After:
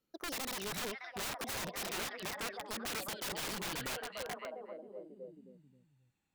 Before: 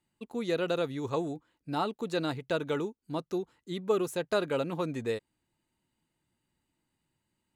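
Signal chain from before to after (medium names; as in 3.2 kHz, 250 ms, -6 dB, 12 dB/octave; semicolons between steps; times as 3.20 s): gliding tape speed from 150% -> 88%; repeats whose band climbs or falls 267 ms, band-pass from 3.2 kHz, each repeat -0.7 oct, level 0 dB; integer overflow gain 29.5 dB; trim -4.5 dB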